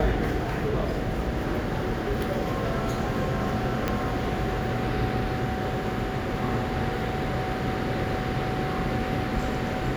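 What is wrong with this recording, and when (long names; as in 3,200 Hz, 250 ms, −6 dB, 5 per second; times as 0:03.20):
0:03.88: click −11 dBFS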